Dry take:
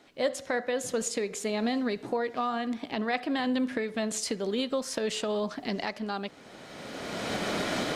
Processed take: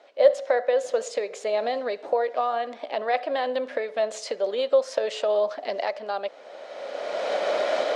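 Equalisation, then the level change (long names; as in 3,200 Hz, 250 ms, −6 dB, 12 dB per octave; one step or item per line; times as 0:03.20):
high-pass with resonance 570 Hz, resonance Q 4.9
low-pass filter 5,400 Hz 12 dB per octave
0.0 dB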